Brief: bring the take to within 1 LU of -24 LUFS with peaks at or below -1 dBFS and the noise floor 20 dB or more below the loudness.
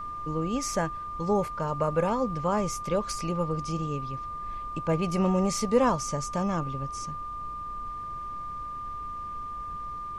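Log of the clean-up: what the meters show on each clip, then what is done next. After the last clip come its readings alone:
steady tone 1.2 kHz; tone level -34 dBFS; noise floor -37 dBFS; noise floor target -50 dBFS; loudness -30.0 LUFS; peak level -11.5 dBFS; loudness target -24.0 LUFS
-> band-stop 1.2 kHz, Q 30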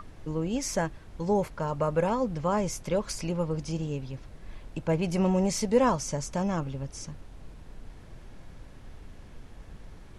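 steady tone not found; noise floor -48 dBFS; noise floor target -49 dBFS
-> noise print and reduce 6 dB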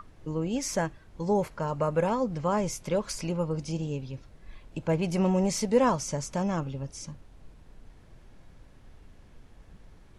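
noise floor -54 dBFS; loudness -29.0 LUFS; peak level -11.5 dBFS; loudness target -24.0 LUFS
-> trim +5 dB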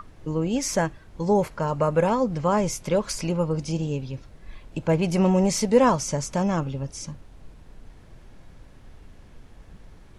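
loudness -24.0 LUFS; peak level -6.5 dBFS; noise floor -49 dBFS

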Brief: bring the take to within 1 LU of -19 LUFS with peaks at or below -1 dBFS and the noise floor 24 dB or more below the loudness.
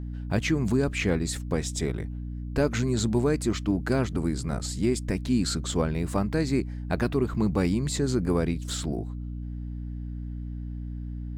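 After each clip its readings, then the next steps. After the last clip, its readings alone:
hum 60 Hz; highest harmonic 300 Hz; hum level -32 dBFS; loudness -28.0 LUFS; peak level -12.5 dBFS; loudness target -19.0 LUFS
-> hum notches 60/120/180/240/300 Hz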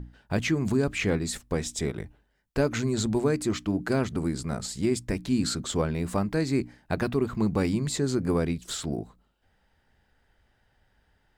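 hum not found; loudness -28.0 LUFS; peak level -13.5 dBFS; loudness target -19.0 LUFS
-> trim +9 dB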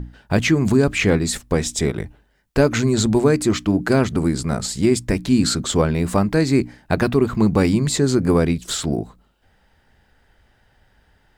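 loudness -19.0 LUFS; peak level -4.5 dBFS; noise floor -61 dBFS

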